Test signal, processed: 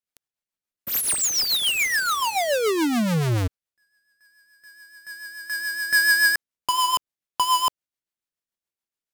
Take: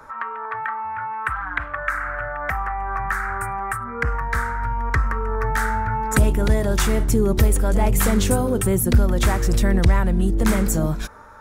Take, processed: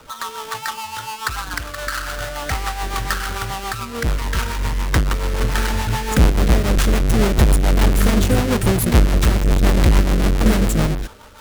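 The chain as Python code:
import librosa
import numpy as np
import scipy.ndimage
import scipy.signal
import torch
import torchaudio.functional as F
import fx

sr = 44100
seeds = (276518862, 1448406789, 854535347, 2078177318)

y = fx.halfwave_hold(x, sr)
y = fx.rotary(y, sr, hz=7.0)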